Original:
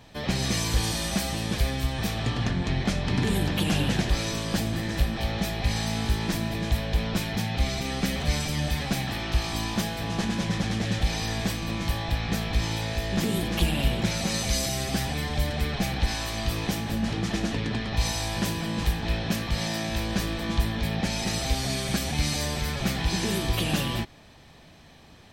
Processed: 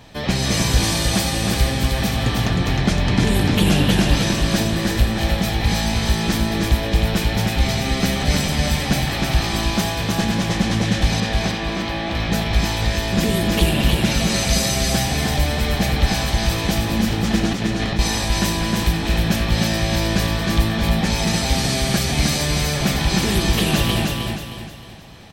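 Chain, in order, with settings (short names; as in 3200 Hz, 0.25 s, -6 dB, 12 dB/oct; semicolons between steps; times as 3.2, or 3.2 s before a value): 11.2–12.15 three-band isolator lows -12 dB, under 180 Hz, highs -18 dB, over 4700 Hz; 17.51–17.99 negative-ratio compressor -31 dBFS, ratio -0.5; on a send: feedback echo 0.311 s, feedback 39%, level -3.5 dB; on the sum: gain +6.5 dB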